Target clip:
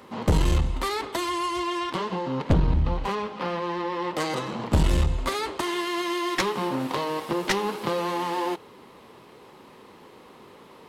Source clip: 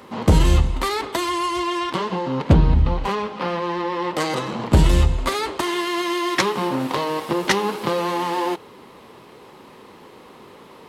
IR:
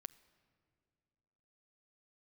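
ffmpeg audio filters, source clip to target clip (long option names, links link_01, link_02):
-af "aeval=exprs='clip(val(0),-1,0.178)':channel_layout=same,volume=-4.5dB"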